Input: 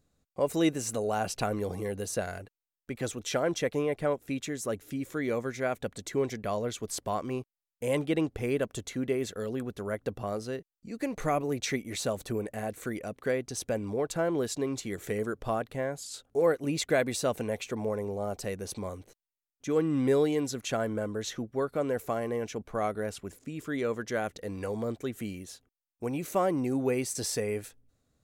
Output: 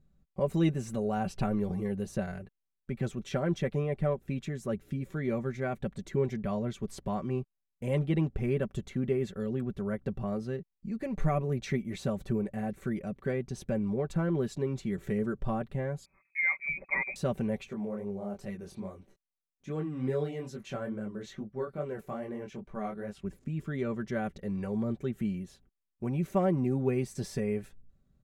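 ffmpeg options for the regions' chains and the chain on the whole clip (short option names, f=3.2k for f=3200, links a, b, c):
-filter_complex "[0:a]asettb=1/sr,asplit=3[a][b][c];[a]atrim=end=16.054[d];[b]atrim=start=16.05:end=17.16,asetpts=PTS-STARTPTS,afade=t=in:d=0.004:c=qsin,afade=t=out:st=1.106:d=0.004:c=qsin,equalizer=f=1.1k:t=o:w=1:g=-6,lowpass=f=2.2k:t=q:w=0.5098,lowpass=f=2.2k:t=q:w=0.6013,lowpass=f=2.2k:t=q:w=0.9,lowpass=f=2.2k:t=q:w=2.563,afreqshift=-2600[e];[c]atrim=start=17.156[f];[d][e]acrossfade=d=0.004:c1=hsin:c2=qsin[g];[g][f]acrossfade=d=0.004:c1=qsin:c2=hsin,asettb=1/sr,asplit=3[h][i][j];[h]atrim=end=17.694[k];[i]atrim=start=17.69:end=23.24,asetpts=PTS-STARTPTS,afade=t=in:d=0.004:c=qsin,afade=t=out:st=5.546:d=0.004:c=qsin,lowshelf=f=170:g=-8,flanger=delay=19.5:depth=5.4:speed=2.4[l];[j]atrim=start=23.236[m];[k][l]acrossfade=d=0.004:c1=hsin:c2=qsin[n];[n][m]acrossfade=d=0.004:c1=qsin:c2=hsin,bass=f=250:g=14,treble=f=4k:g=-10,aecho=1:1:5.2:0.64,volume=-6dB"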